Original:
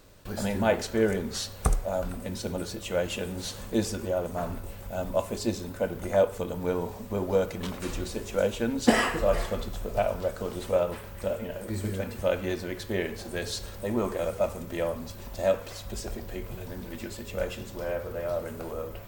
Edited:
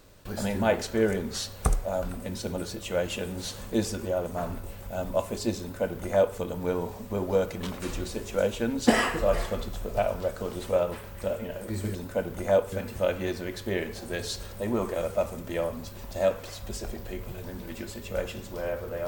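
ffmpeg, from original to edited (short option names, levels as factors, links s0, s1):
-filter_complex "[0:a]asplit=3[s0][s1][s2];[s0]atrim=end=11.952[s3];[s1]atrim=start=5.598:end=6.372[s4];[s2]atrim=start=11.948[s5];[s3][s4]acrossfade=d=0.004:c1=hsin:c2=hsin[s6];[s6][s5]acrossfade=d=0.004:c1=hsin:c2=hsin"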